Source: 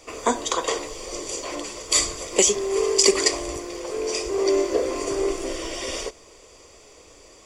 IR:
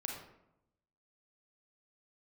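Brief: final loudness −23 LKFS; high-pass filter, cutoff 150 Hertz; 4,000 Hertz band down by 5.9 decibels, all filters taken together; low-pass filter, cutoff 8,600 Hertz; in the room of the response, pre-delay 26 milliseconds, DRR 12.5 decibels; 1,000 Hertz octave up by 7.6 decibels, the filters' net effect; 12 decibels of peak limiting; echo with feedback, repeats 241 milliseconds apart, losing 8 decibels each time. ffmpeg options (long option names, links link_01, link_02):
-filter_complex "[0:a]highpass=150,lowpass=8600,equalizer=frequency=1000:width_type=o:gain=9,equalizer=frequency=4000:width_type=o:gain=-8,alimiter=limit=-14dB:level=0:latency=1,aecho=1:1:241|482|723|964|1205:0.398|0.159|0.0637|0.0255|0.0102,asplit=2[link_01][link_02];[1:a]atrim=start_sample=2205,adelay=26[link_03];[link_02][link_03]afir=irnorm=-1:irlink=0,volume=-12.5dB[link_04];[link_01][link_04]amix=inputs=2:normalize=0,volume=1.5dB"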